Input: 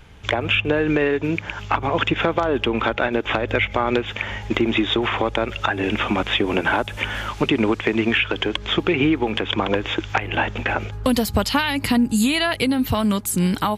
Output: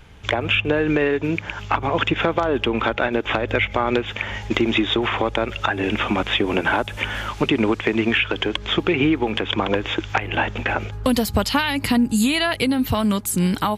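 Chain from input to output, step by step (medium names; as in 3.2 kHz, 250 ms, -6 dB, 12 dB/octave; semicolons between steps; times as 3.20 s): 4.33–4.78 s: dynamic bell 5.7 kHz, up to +5 dB, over -43 dBFS, Q 0.79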